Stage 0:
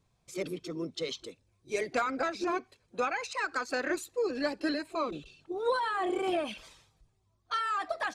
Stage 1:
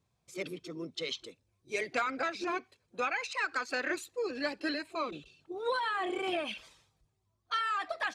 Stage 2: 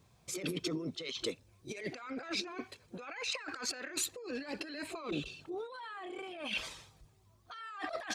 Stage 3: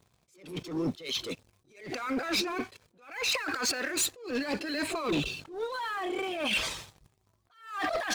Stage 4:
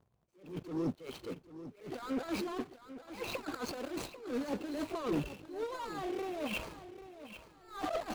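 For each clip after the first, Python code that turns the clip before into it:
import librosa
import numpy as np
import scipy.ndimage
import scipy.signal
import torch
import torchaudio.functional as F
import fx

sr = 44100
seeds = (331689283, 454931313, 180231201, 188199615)

y1 = scipy.signal.sosfilt(scipy.signal.butter(2, 53.0, 'highpass', fs=sr, output='sos'), x)
y1 = fx.dynamic_eq(y1, sr, hz=2600.0, q=0.77, threshold_db=-49.0, ratio=4.0, max_db=8)
y1 = y1 * 10.0 ** (-4.5 / 20.0)
y2 = fx.over_compress(y1, sr, threshold_db=-45.0, ratio=-1.0)
y2 = y2 * 10.0 ** (3.5 / 20.0)
y3 = fx.leveller(y2, sr, passes=3)
y3 = fx.attack_slew(y3, sr, db_per_s=120.0)
y4 = scipy.signal.medfilt(y3, 25)
y4 = fx.echo_feedback(y4, sr, ms=793, feedback_pct=30, wet_db=-13.0)
y4 = y4 * 10.0 ** (-3.5 / 20.0)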